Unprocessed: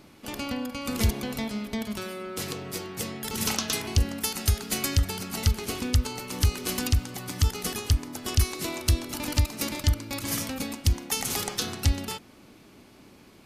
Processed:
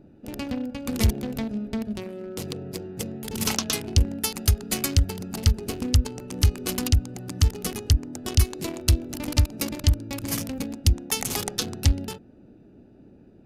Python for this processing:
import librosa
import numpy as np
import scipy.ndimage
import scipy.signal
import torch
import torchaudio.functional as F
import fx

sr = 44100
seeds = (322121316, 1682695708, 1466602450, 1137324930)

y = fx.wiener(x, sr, points=41)
y = y * librosa.db_to_amplitude(3.5)